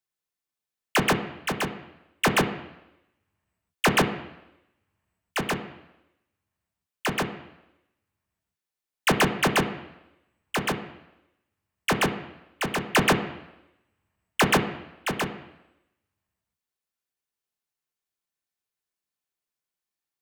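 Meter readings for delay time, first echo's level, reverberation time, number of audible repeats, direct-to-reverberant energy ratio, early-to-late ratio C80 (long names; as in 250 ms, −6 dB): no echo audible, no echo audible, 0.90 s, no echo audible, 4.0 dB, 12.5 dB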